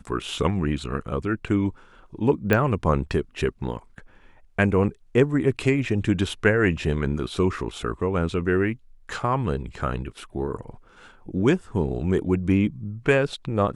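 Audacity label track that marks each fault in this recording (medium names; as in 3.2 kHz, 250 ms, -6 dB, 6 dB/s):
2.530000	2.530000	pop -8 dBFS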